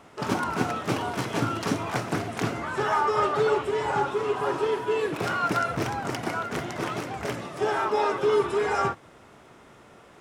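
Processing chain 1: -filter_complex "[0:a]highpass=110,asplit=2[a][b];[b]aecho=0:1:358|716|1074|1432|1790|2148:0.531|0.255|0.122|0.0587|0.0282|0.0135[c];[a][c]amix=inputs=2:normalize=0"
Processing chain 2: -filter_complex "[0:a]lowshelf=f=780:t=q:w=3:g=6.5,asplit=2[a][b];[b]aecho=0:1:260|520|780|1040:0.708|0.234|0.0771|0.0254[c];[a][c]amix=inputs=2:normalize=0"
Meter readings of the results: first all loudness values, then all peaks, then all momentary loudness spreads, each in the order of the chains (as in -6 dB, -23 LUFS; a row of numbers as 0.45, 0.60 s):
-26.0, -18.5 LUFS; -10.0, -3.5 dBFS; 8, 9 LU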